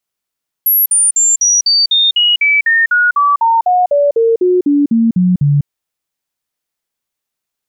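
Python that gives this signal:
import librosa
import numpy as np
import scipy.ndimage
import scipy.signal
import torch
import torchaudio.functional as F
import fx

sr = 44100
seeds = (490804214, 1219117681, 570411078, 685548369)

y = fx.stepped_sweep(sr, from_hz=11600.0, direction='down', per_octave=3, tones=20, dwell_s=0.2, gap_s=0.05, level_db=-7.5)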